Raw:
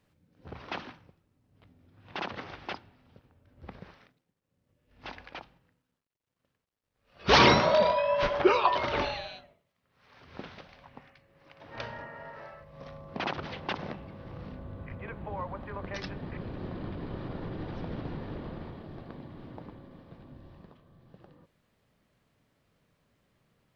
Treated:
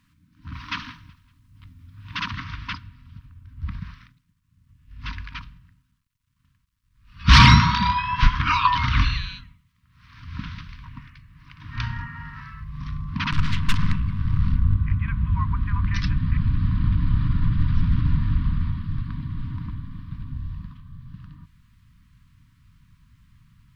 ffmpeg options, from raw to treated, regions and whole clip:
ffmpeg -i in.wav -filter_complex "[0:a]asettb=1/sr,asplit=3[link_01][link_02][link_03];[link_01]atrim=end=0.534[link_04];[link_02]atrim=start=0.53:end=2.36,asetpts=PTS-STARTPTS,afade=type=in:duration=0.004:curve=qsin,afade=type=out:start_time=1.826:duration=0.004:curve=qsin,highshelf=frequency=3900:gain=5.5,aecho=1:1:187|374|561:0.075|0.0292|0.0114,atrim=end_sample=80703[link_05];[link_03]atrim=start=2.356[link_06];[link_04][link_05]acrossfade=duration=0.004:curve1=hsin:curve2=qsin[link_07];[link_07][link_06]acrossfade=duration=0.004:curve1=qsin:curve2=hsin,asettb=1/sr,asplit=3[link_08][link_09][link_10];[link_08]atrim=end=13.324[link_11];[link_09]atrim=start=13.32:end=14.76,asetpts=PTS-STARTPTS,afade=type=in:duration=0.004:curve=qsin,afade=type=out:start_time=1.436:duration=0.004:curve=qsin,acontrast=88,aeval=exprs='(tanh(25.1*val(0)+0.75)-tanh(0.75))/25.1':channel_layout=same[link_12];[link_10]atrim=start=14.756[link_13];[link_11][link_12]acrossfade=duration=0.004:curve1=hsin:curve2=qsin[link_14];[link_14][link_13]acrossfade=duration=0.004:curve1=qsin:curve2=hsin,afftfilt=real='re*(1-between(b*sr/4096,310,930))':imag='im*(1-between(b*sr/4096,310,930))':win_size=4096:overlap=0.75,asubboost=boost=8:cutoff=110,acontrast=50,volume=2dB" out.wav

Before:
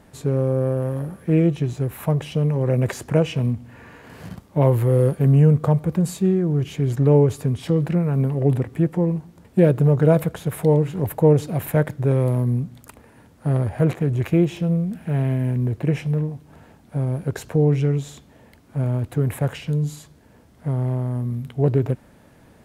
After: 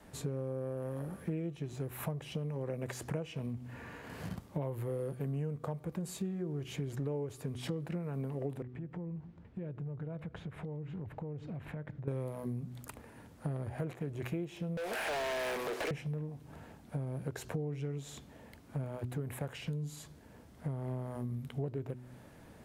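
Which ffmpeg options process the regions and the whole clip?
ffmpeg -i in.wav -filter_complex "[0:a]asettb=1/sr,asplit=3[link_01][link_02][link_03];[link_01]atrim=end=8.624[link_04];[link_02]atrim=start=8.62:end=12.08,asetpts=PTS-STARTPTS,afade=type=in:duration=0.004:curve=qsin,afade=type=out:start_time=3.456:duration=0.004:curve=qsin,lowpass=2200,equalizer=frequency=680:width=0.37:gain=-7.5,acompressor=threshold=-34dB:ratio=6:attack=3.2:release=140:knee=1:detection=peak[link_05];[link_03]atrim=start=12.076[link_06];[link_04][link_05]acrossfade=duration=0.004:curve1=hsin:curve2=qsin[link_07];[link_07][link_06]acrossfade=duration=0.004:curve1=qsin:curve2=hsin,asettb=1/sr,asplit=3[link_08][link_09][link_10];[link_08]atrim=end=14.774[link_11];[link_09]atrim=start=14.77:end=15.91,asetpts=PTS-STARTPTS,afade=type=in:duration=0.004:curve=qsin,afade=type=out:start_time=1.136:duration=0.004:curve=qsin,highpass=frequency=450:width=0.5412,highpass=frequency=450:width=1.3066,asplit=2[link_12][link_13];[link_13]highpass=frequency=720:poles=1,volume=37dB,asoftclip=type=tanh:threshold=-17dB[link_14];[link_12][link_14]amix=inputs=2:normalize=0,lowpass=frequency=5500:poles=1,volume=-6dB[link_15];[link_10]atrim=start=15.906[link_16];[link_11][link_15]acrossfade=duration=0.004:curve1=hsin:curve2=qsin[link_17];[link_17][link_16]acrossfade=duration=0.004:curve1=qsin:curve2=hsin,bandreject=frequency=124.7:width_type=h:width=4,bandreject=frequency=249.4:width_type=h:width=4,bandreject=frequency=374.1:width_type=h:width=4,adynamicequalizer=threshold=0.0251:dfrequency=110:dqfactor=0.78:tfrequency=110:tqfactor=0.78:attack=5:release=100:ratio=0.375:range=3.5:mode=cutabove:tftype=bell,acompressor=threshold=-31dB:ratio=6,volume=-4dB" out.wav

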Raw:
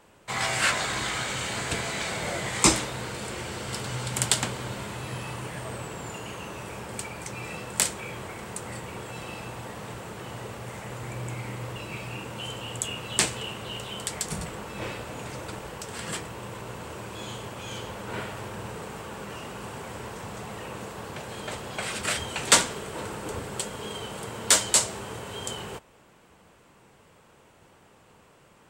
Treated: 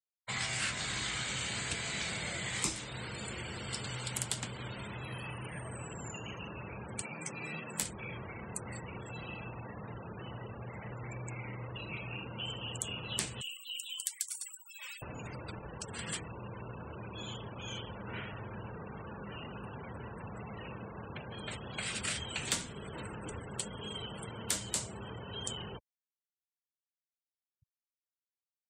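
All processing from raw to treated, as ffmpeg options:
ffmpeg -i in.wav -filter_complex "[0:a]asettb=1/sr,asplit=3[link_01][link_02][link_03];[link_01]atrim=end=7.024[link_04];[link_02]atrim=start=7.02:end=7.82,asetpts=PTS-STARTPTS,afade=type=in:duration=0.004:curve=qsin,afade=type=out:start_time=0.796:duration=0.004:curve=qsin,highpass=frequency=130:width=0.5412,highpass=frequency=130:width=1.3066,asplit=2[link_05][link_06];[link_06]adelay=13,volume=-4.5dB[link_07];[link_05][link_07]amix=inputs=2:normalize=0,atrim=end_sample=35280[link_08];[link_03]atrim=start=7.816[link_09];[link_04][link_08]acrossfade=duration=0.004:curve1=hsin:curve2=qsin[link_10];[link_10][link_09]acrossfade=duration=0.004:curve1=qsin:curve2=hsin,asettb=1/sr,asplit=3[link_11][link_12][link_13];[link_11]atrim=end=13.414[link_14];[link_12]atrim=start=13.41:end=15.02,asetpts=PTS-STARTPTS,afade=type=in:duration=0.004:curve=qsin,afade=type=out:start_time=1.606:duration=0.004:curve=qsin,highpass=570,aderivative,acontrast=65[link_15];[link_13]atrim=start=15.016[link_16];[link_14][link_15]acrossfade=duration=0.004:curve1=hsin:curve2=qsin[link_17];[link_17][link_16]acrossfade=duration=0.004:curve1=qsin:curve2=hsin,afftfilt=real='re*gte(hypot(re,im),0.0141)':imag='im*gte(hypot(re,im),0.0141)':win_size=1024:overlap=0.75,acrossover=split=260|1800[link_18][link_19][link_20];[link_18]acompressor=threshold=-41dB:ratio=4[link_21];[link_19]acompressor=threshold=-47dB:ratio=4[link_22];[link_20]acompressor=threshold=-33dB:ratio=4[link_23];[link_21][link_22][link_23]amix=inputs=3:normalize=0,volume=-1.5dB" out.wav

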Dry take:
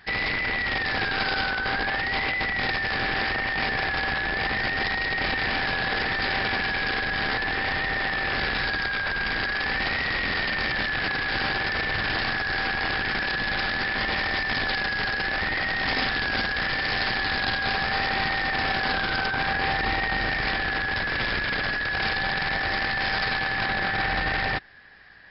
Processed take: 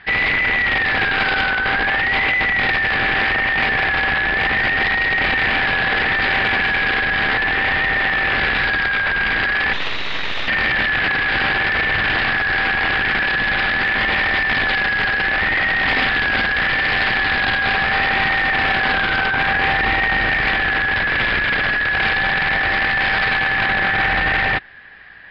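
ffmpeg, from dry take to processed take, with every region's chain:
ffmpeg -i in.wav -filter_complex "[0:a]asettb=1/sr,asplit=3[link_01][link_02][link_03];[link_01]atrim=end=9.734[link_04];[link_02]atrim=start=9.73:end=10.48,asetpts=PTS-STARTPTS,afade=type=in:duration=0.004:curve=qsin,afade=type=out:start_time=0.746:duration=0.004:curve=qsin,lowpass=frequency=2800:poles=1,aemphasis=mode=production:type=75fm,aeval=exprs='abs(val(0))':channel_layout=same[link_05];[link_03]atrim=start=10.476[link_06];[link_04][link_05]acrossfade=duration=0.004:curve1=hsin:curve2=qsin[link_07];[link_07][link_06]acrossfade=duration=0.004:curve1=qsin:curve2=hsin,lowpass=frequency=3000:width=0.5412,lowpass=frequency=3000:width=1.3066,highshelf=frequency=2200:gain=10,acontrast=36" out.wav

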